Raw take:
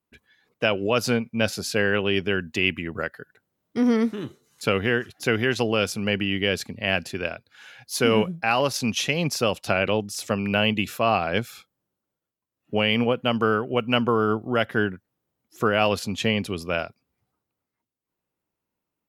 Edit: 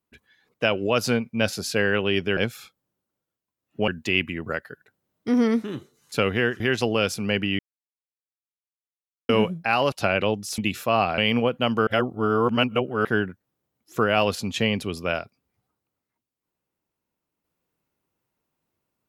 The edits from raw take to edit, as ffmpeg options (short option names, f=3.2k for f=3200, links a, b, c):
-filter_complex "[0:a]asplit=11[a][b][c][d][e][f][g][h][i][j][k];[a]atrim=end=2.372[l];[b]atrim=start=11.308:end=12.822[m];[c]atrim=start=2.368:end=5.092[n];[d]atrim=start=5.378:end=6.37,asetpts=PTS-STARTPTS,afade=t=out:st=0.988:d=0.004:c=hsin[o];[e]atrim=start=6.37:end=8.07,asetpts=PTS-STARTPTS,volume=0[p];[f]atrim=start=8.07:end=8.702,asetpts=PTS-STARTPTS,afade=t=in:d=0.004:c=hsin[q];[g]atrim=start=9.578:end=10.242[r];[h]atrim=start=10.708:end=11.312[s];[i]atrim=start=12.818:end=13.512[t];[j]atrim=start=13.508:end=14.692,asetpts=PTS-STARTPTS,areverse[u];[k]atrim=start=14.688[v];[l][m]acrossfade=d=0.004:c1=hsin:c2=hsin[w];[w][n]acrossfade=d=0.004:c1=hsin:c2=hsin[x];[o][p][q]concat=n=3:v=0:a=1[y];[x][y]acrossfade=d=0.004:c1=hsin:c2=hsin[z];[z][r]acrossfade=d=0.004:c1=hsin:c2=hsin[aa];[aa][s]acrossfade=d=0.004:c1=hsin:c2=hsin[ab];[ab][t]acrossfade=d=0.004:c1=hsin:c2=hsin[ac];[ac][u]acrossfade=d=0.004:c1=hsin:c2=hsin[ad];[ad][v]acrossfade=d=0.004:c1=hsin:c2=hsin"